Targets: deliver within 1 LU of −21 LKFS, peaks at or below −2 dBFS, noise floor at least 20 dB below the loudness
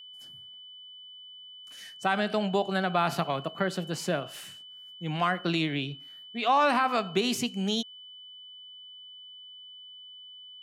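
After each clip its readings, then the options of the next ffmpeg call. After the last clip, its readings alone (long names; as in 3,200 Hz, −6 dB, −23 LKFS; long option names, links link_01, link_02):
interfering tone 3,000 Hz; level of the tone −45 dBFS; integrated loudness −28.5 LKFS; sample peak −13.0 dBFS; target loudness −21.0 LKFS
→ -af "bandreject=frequency=3000:width=30"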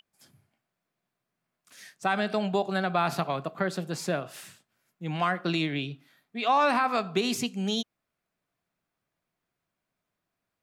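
interfering tone none found; integrated loudness −28.5 LKFS; sample peak −13.0 dBFS; target loudness −21.0 LKFS
→ -af "volume=7.5dB"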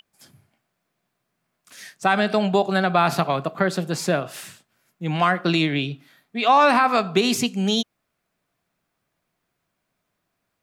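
integrated loudness −21.0 LKFS; sample peak −5.5 dBFS; background noise floor −77 dBFS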